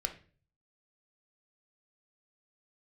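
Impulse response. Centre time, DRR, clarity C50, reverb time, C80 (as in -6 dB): 10 ms, 5.0 dB, 12.0 dB, 0.40 s, 17.5 dB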